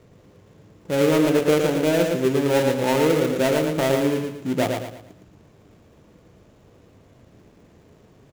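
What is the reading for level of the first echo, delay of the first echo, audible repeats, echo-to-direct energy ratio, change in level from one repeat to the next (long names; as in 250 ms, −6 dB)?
−4.5 dB, 113 ms, 4, −4.0 dB, −8.5 dB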